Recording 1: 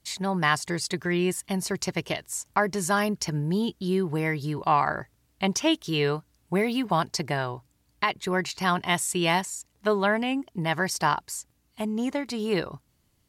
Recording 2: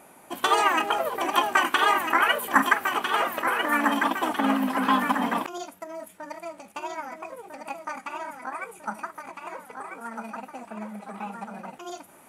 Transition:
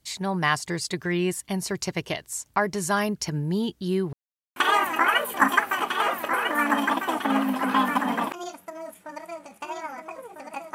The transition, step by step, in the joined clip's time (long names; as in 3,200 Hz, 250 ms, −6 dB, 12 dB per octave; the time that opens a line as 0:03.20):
recording 1
0:04.13–0:04.56: silence
0:04.56: continue with recording 2 from 0:01.70